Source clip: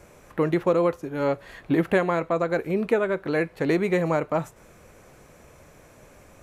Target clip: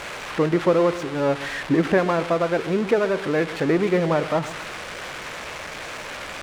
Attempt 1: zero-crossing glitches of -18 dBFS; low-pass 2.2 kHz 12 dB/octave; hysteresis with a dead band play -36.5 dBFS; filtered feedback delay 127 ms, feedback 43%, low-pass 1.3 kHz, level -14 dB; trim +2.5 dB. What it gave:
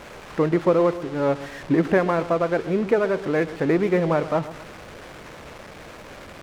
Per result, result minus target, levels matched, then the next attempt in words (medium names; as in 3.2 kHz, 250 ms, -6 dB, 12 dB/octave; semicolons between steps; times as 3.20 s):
zero-crossing glitches: distortion -7 dB; hysteresis with a dead band: distortion +6 dB
zero-crossing glitches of -11 dBFS; low-pass 2.2 kHz 12 dB/octave; hysteresis with a dead band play -36.5 dBFS; filtered feedback delay 127 ms, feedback 43%, low-pass 1.3 kHz, level -14 dB; trim +2.5 dB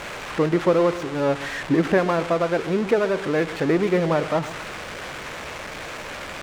hysteresis with a dead band: distortion +6 dB
zero-crossing glitches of -11 dBFS; low-pass 2.2 kHz 12 dB/octave; hysteresis with a dead band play -43 dBFS; filtered feedback delay 127 ms, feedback 43%, low-pass 1.3 kHz, level -14 dB; trim +2.5 dB